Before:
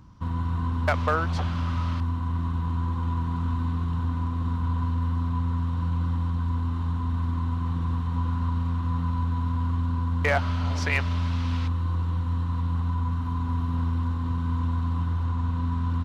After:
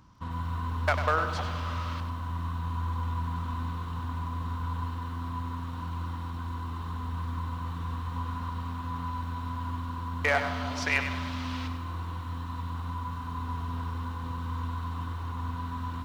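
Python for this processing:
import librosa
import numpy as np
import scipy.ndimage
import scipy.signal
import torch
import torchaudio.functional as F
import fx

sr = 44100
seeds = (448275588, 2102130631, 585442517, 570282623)

y = fx.low_shelf(x, sr, hz=410.0, db=-9.0)
y = fx.echo_wet_lowpass(y, sr, ms=156, feedback_pct=66, hz=1500.0, wet_db=-13.5)
y = fx.echo_crushed(y, sr, ms=97, feedback_pct=35, bits=9, wet_db=-9)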